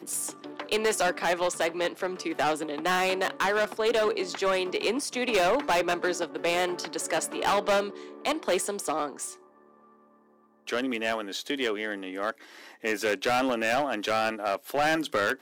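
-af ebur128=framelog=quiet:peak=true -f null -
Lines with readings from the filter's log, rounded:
Integrated loudness:
  I:         -27.8 LUFS
  Threshold: -38.2 LUFS
Loudness range:
  LRA:         6.3 LU
  Threshold: -48.4 LUFS
  LRA low:   -32.7 LUFS
  LRA high:  -26.5 LUFS
True peak:
  Peak:      -18.5 dBFS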